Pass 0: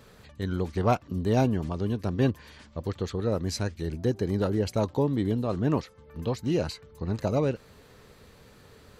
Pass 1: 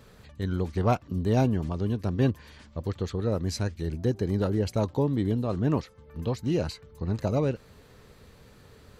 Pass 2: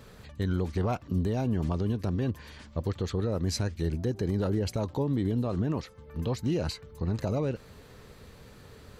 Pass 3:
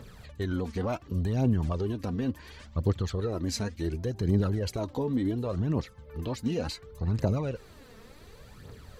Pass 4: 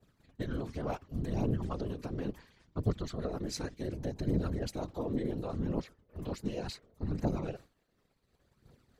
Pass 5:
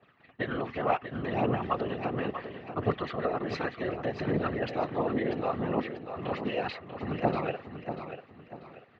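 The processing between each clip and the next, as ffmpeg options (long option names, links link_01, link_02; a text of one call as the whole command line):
ffmpeg -i in.wav -af "lowshelf=frequency=170:gain=4.5,volume=-1.5dB" out.wav
ffmpeg -i in.wav -af "alimiter=limit=-22.5dB:level=0:latency=1:release=75,volume=2.5dB" out.wav
ffmpeg -i in.wav -af "aphaser=in_gain=1:out_gain=1:delay=4.6:decay=0.55:speed=0.69:type=triangular,volume=-1.5dB" out.wav
ffmpeg -i in.wav -af "tremolo=f=180:d=0.889,agate=range=-33dB:threshold=-41dB:ratio=3:detection=peak,afftfilt=real='hypot(re,im)*cos(2*PI*random(0))':imag='hypot(re,im)*sin(2*PI*random(1))':win_size=512:overlap=0.75,volume=4dB" out.wav
ffmpeg -i in.wav -filter_complex "[0:a]highpass=170,equalizer=frequency=190:width_type=q:width=4:gain=-6,equalizer=frequency=290:width_type=q:width=4:gain=-4,equalizer=frequency=750:width_type=q:width=4:gain=7,equalizer=frequency=1200:width_type=q:width=4:gain=8,equalizer=frequency=1900:width_type=q:width=4:gain=9,equalizer=frequency=2700:width_type=q:width=4:gain=8,lowpass=frequency=3400:width=0.5412,lowpass=frequency=3400:width=1.3066,asplit=2[link_01][link_02];[link_02]aecho=0:1:640|1280|1920|2560:0.355|0.124|0.0435|0.0152[link_03];[link_01][link_03]amix=inputs=2:normalize=0,volume=6.5dB" out.wav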